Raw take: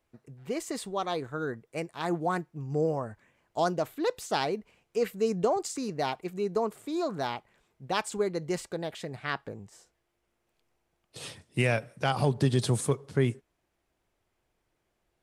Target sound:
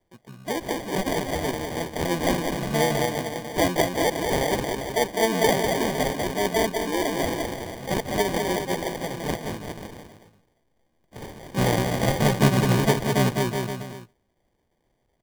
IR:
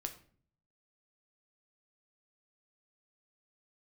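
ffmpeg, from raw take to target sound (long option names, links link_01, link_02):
-filter_complex "[0:a]aecho=1:1:200|370|514.5|637.3|741.7:0.631|0.398|0.251|0.158|0.1,asplit=2[link_01][link_02];[link_02]asetrate=66075,aresample=44100,atempo=0.66742,volume=-3dB[link_03];[link_01][link_03]amix=inputs=2:normalize=0,acrusher=samples=33:mix=1:aa=0.000001,volume=2.5dB"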